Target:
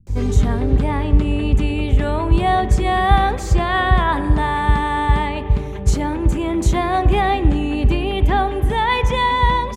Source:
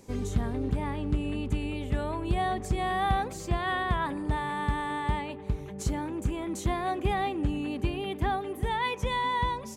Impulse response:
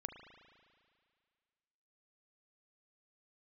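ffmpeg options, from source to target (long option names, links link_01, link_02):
-filter_complex "[0:a]acrossover=split=150[link_01][link_02];[link_02]adelay=70[link_03];[link_01][link_03]amix=inputs=2:normalize=0,asplit=2[link_04][link_05];[1:a]atrim=start_sample=2205,lowpass=8600,lowshelf=frequency=100:gain=11.5[link_06];[link_05][link_06]afir=irnorm=-1:irlink=0,volume=0dB[link_07];[link_04][link_07]amix=inputs=2:normalize=0,volume=7dB"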